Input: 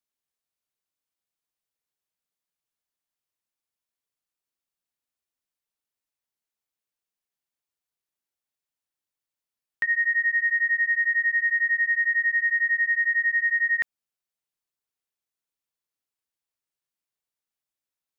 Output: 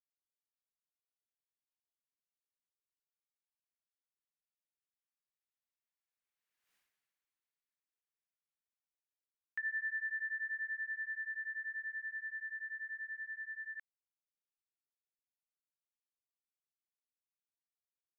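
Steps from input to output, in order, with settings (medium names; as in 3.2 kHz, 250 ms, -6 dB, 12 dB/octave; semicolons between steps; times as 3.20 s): Doppler pass-by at 6.75 s, 19 m/s, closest 1.3 m; peaking EQ 1.9 kHz +10.5 dB 1.7 oct; trim +7.5 dB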